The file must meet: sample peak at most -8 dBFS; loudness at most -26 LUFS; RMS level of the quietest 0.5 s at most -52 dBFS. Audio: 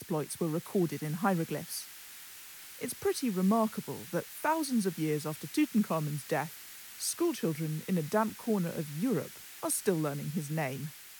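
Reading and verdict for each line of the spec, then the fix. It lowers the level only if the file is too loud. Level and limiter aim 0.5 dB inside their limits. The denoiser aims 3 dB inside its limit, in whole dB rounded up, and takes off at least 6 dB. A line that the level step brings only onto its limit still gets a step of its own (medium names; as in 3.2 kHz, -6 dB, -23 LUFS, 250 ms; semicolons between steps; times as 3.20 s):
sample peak -15.5 dBFS: pass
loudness -32.5 LUFS: pass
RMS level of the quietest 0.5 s -49 dBFS: fail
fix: noise reduction 6 dB, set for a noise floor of -49 dBFS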